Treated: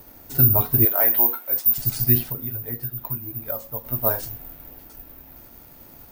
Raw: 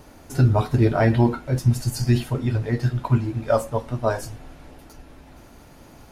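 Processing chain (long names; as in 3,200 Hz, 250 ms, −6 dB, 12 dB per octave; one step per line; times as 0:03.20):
bad sample-rate conversion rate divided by 3×, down none, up zero stuff
0:00.85–0:01.78: high-pass filter 560 Hz 12 dB per octave
0:02.28–0:03.85: downward compressor 4 to 1, threshold −22 dBFS, peak gain reduction 14 dB
level −4 dB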